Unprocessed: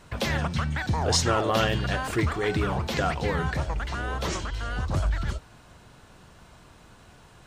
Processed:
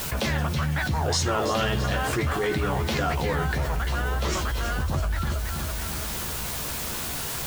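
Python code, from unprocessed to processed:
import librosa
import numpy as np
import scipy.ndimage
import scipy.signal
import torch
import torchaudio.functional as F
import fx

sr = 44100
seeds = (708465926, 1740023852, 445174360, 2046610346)

y = fx.quant_dither(x, sr, seeds[0], bits=8, dither='triangular')
y = fx.doubler(y, sr, ms=14.0, db=-5.5)
y = fx.echo_feedback(y, sr, ms=329, feedback_pct=46, wet_db=-12.5)
y = fx.env_flatten(y, sr, amount_pct=70)
y = y * librosa.db_to_amplitude(-4.0)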